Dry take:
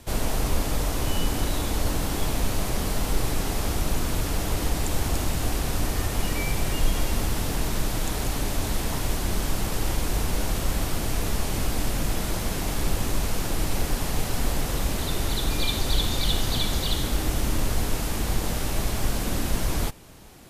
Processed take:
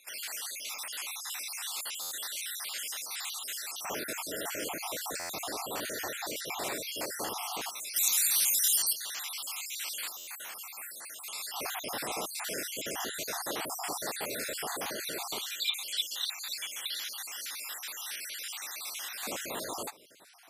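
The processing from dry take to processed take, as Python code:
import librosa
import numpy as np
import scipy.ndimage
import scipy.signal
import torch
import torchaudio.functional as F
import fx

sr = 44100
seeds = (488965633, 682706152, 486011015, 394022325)

y = fx.spec_dropout(x, sr, seeds[0], share_pct=58)
y = fx.rider(y, sr, range_db=10, speed_s=2.0)
y = fx.bass_treble(y, sr, bass_db=15, treble_db=14, at=(7.96, 8.93))
y = fx.filter_lfo_highpass(y, sr, shape='square', hz=0.13, low_hz=480.0, high_hz=1900.0, q=0.79)
y = fx.peak_eq(y, sr, hz=4600.0, db=-9.0, octaves=1.9, at=(10.09, 11.28))
y = fx.buffer_glitch(y, sr, at_s=(2.01, 5.19, 10.17), block=512, repeats=8)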